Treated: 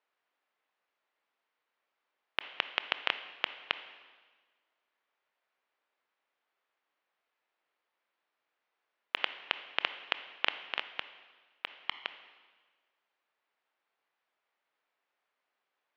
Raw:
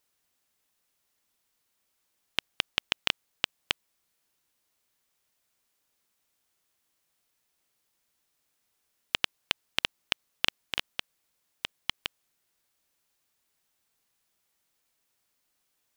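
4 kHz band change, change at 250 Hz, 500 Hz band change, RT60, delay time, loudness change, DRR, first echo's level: -5.5 dB, -8.0 dB, 0.0 dB, 1.4 s, none, -3.5 dB, 11.0 dB, none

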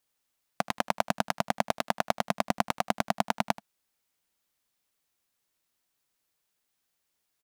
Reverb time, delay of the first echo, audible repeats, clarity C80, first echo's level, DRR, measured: none, 80 ms, 1, none, -19.5 dB, none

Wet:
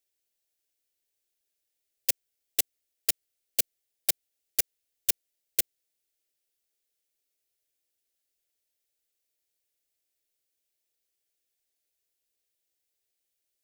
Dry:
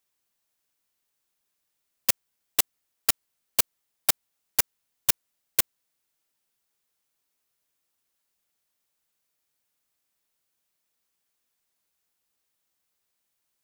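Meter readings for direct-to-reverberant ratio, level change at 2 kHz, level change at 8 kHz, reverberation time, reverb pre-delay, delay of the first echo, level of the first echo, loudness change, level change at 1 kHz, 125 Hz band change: none, -6.5 dB, -3.0 dB, none, none, none, none, -3.5 dB, -13.5 dB, n/a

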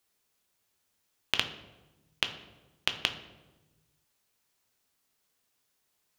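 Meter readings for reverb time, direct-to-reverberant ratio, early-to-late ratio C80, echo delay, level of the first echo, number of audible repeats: 1.2 s, 6.0 dB, 13.0 dB, none, none, none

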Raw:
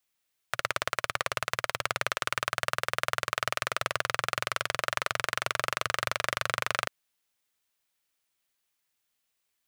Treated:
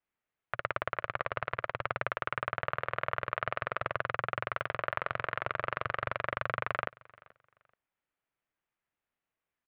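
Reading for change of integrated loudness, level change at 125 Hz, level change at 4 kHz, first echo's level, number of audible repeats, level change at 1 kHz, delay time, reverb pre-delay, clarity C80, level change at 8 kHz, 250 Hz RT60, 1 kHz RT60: -4.5 dB, 0.0 dB, -14.5 dB, -24.0 dB, 1, -2.5 dB, 0.431 s, none, none, under -40 dB, none, none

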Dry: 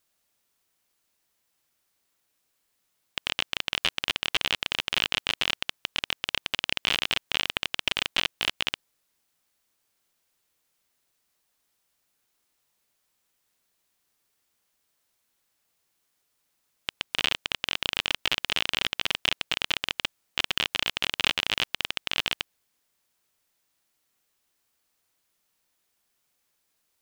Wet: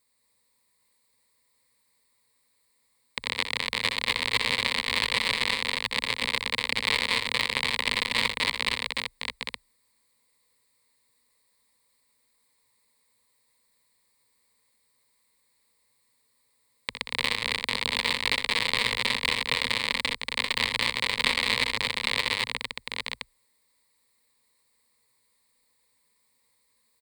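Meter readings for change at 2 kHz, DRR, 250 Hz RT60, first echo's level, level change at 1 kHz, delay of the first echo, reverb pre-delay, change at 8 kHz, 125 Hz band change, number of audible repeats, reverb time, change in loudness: +3.5 dB, none, none, -9.5 dB, +4.5 dB, 62 ms, none, +2.0 dB, +4.0 dB, 3, none, +1.5 dB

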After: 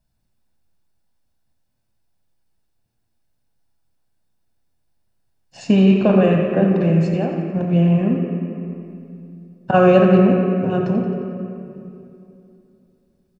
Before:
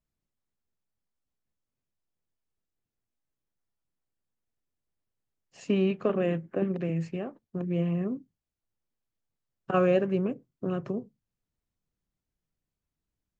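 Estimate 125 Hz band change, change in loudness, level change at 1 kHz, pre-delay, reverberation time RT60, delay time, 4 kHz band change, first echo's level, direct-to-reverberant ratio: +14.5 dB, +13.0 dB, +14.0 dB, 3 ms, 2.8 s, 88 ms, +12.0 dB, -11.0 dB, 1.0 dB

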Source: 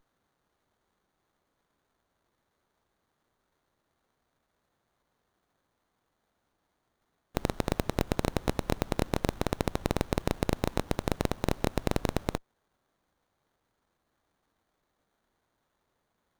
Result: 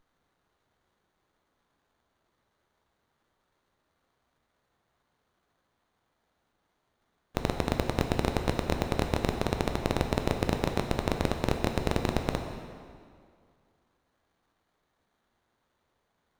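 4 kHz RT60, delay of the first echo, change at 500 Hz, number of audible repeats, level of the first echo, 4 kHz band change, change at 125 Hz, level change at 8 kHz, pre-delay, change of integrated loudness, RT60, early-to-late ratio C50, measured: 1.7 s, none, +1.5 dB, none, none, +2.5 dB, +2.0 dB, -1.0 dB, 9 ms, +1.5 dB, 2.2 s, 6.0 dB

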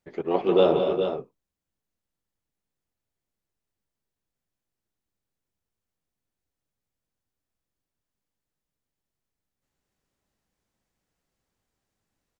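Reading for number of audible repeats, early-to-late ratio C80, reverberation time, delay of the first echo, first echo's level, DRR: 3, none, none, 0.177 s, -9.5 dB, none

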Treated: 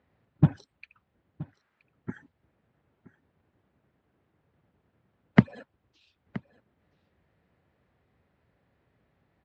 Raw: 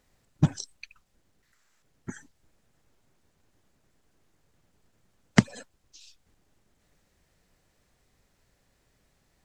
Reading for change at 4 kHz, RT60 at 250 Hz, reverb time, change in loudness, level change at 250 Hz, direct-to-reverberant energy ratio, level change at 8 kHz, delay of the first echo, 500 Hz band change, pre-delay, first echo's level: -9.0 dB, none, none, +3.0 dB, +1.5 dB, none, under -25 dB, 0.973 s, +1.0 dB, none, -18.5 dB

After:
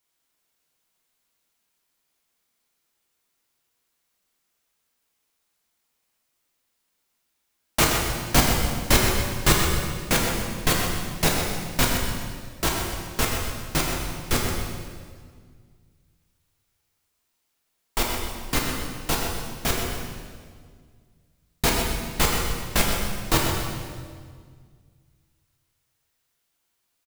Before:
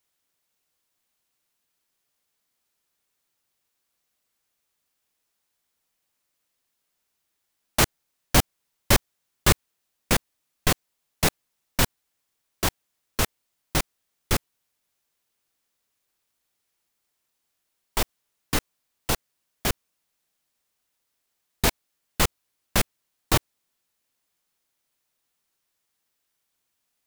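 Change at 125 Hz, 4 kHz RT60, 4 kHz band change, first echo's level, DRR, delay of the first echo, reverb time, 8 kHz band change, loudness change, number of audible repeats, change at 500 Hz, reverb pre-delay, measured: +3.0 dB, 1.6 s, +3.0 dB, -8.5 dB, -2.5 dB, 0.126 s, 1.9 s, +2.5 dB, +1.5 dB, 1, +3.0 dB, 3 ms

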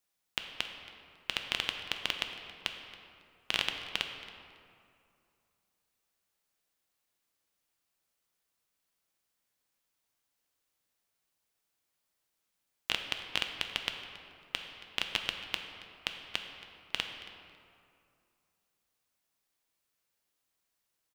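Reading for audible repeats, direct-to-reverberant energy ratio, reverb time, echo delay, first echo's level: 1, 4.5 dB, 2.4 s, 0.275 s, -19.0 dB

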